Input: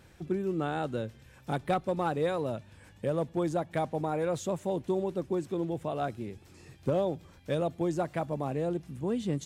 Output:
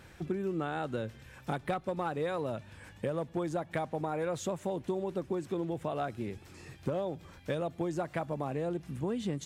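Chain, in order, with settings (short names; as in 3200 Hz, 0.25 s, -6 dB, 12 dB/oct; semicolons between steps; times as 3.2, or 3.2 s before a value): bell 1600 Hz +4 dB 1.9 oct; compressor, threshold -32 dBFS, peak gain reduction 10 dB; gain +2 dB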